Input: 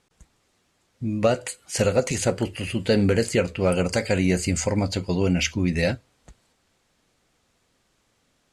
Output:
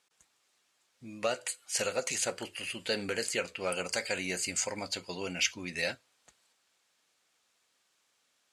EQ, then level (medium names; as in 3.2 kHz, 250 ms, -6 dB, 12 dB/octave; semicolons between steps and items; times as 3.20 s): high-pass 1.5 kHz 6 dB/octave; band-stop 2 kHz, Q 30; -2.5 dB